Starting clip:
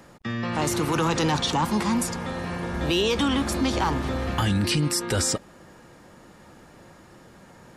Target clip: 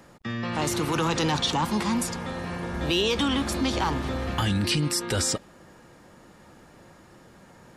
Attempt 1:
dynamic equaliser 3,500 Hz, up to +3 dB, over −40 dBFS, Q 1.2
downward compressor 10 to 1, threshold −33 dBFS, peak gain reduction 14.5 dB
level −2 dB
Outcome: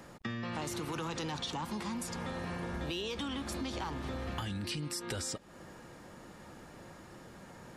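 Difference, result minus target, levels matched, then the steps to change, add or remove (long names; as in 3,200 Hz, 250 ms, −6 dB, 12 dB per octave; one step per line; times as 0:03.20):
downward compressor: peak gain reduction +14.5 dB
remove: downward compressor 10 to 1, threshold −33 dBFS, peak gain reduction 14.5 dB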